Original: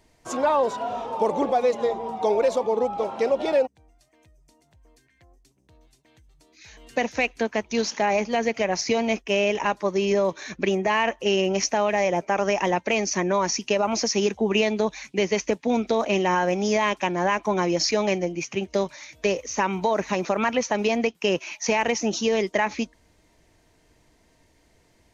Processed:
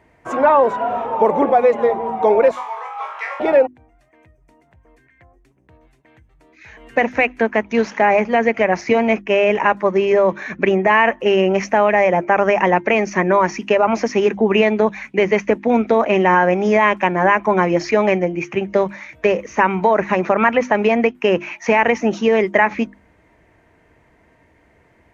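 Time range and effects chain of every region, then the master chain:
2.51–3.4 HPF 1100 Hz 24 dB/oct + flutter echo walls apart 3.6 m, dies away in 0.45 s
whole clip: HPF 49 Hz; resonant high shelf 3000 Hz -14 dB, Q 1.5; notches 50/100/150/200/250/300/350 Hz; gain +7.5 dB

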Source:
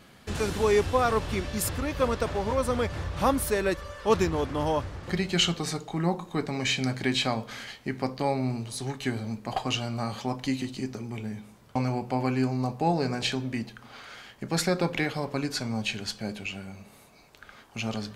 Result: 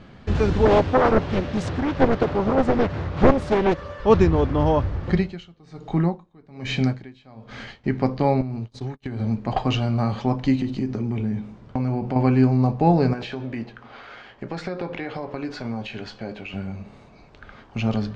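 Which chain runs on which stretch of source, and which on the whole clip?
0.65–4 HPF 120 Hz + Doppler distortion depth 0.95 ms
5.13–7.84 high shelf 10000 Hz +4 dB + dB-linear tremolo 1.2 Hz, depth 30 dB
8.41–9.2 gate -36 dBFS, range -42 dB + compressor 10:1, threshold -34 dBFS
10.55–12.16 compressor 3:1, threshold -32 dBFS + bell 260 Hz +3 dB 1.5 oct
13.13–16.54 tone controls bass -11 dB, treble -5 dB + compressor 4:1, threshold -33 dBFS + doubler 17 ms -11.5 dB
whole clip: Bessel low-pass 4500 Hz, order 6; tilt -2 dB/oct; gain +5 dB

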